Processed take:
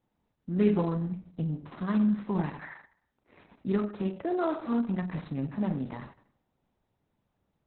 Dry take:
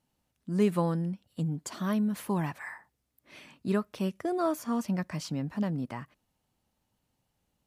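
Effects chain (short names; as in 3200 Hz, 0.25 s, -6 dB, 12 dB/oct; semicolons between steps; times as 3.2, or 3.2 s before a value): median filter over 15 samples; 2.18–2.74 LPF 8600 Hz 12 dB/oct; Schroeder reverb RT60 0.5 s, combs from 30 ms, DRR 6 dB; Opus 6 kbps 48000 Hz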